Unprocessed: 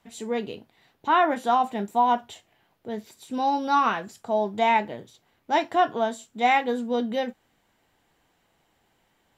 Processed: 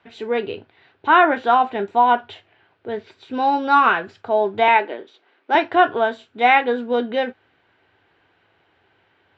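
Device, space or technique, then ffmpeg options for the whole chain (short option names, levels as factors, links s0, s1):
guitar cabinet: -filter_complex "[0:a]asettb=1/sr,asplit=3[s0][s1][s2];[s0]atrim=end=4.684[s3];[s1]atrim=start=4.68:end=5.55,asetpts=PTS-STARTPTS,afade=t=in:d=0.004:c=qsin,afade=t=out:st=0.866:d=0.004:c=qsin,highpass=f=250:w=0.5412,highpass=f=250:w=1.3066[s4];[s2]atrim=start=5.546[s5];[s3][s4]acrossfade=d=0.004:c1=hsin:c2=qsin[s6];[s6][s5]acrossfade=d=0.004:c1=qsin:c2=hsin,highpass=89,equalizer=f=97:t=q:w=4:g=10,equalizer=f=140:t=q:w=4:g=-5,equalizer=f=210:t=q:w=4:g=-8,equalizer=f=390:t=q:w=4:g=6,equalizer=f=1500:t=q:w=4:g=8,equalizer=f=2500:t=q:w=4:g=4,lowpass=f=4000:w=0.5412,lowpass=f=4000:w=1.3066,volume=1.78"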